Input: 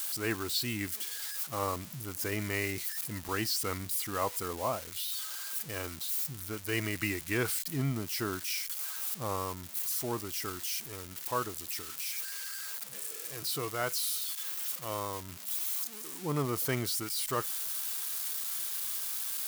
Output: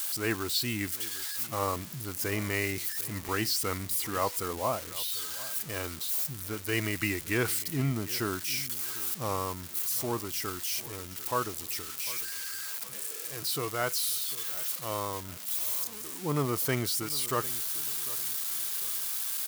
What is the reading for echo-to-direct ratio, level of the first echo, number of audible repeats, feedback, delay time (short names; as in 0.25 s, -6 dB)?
-17.5 dB, -18.0 dB, 2, 36%, 0.749 s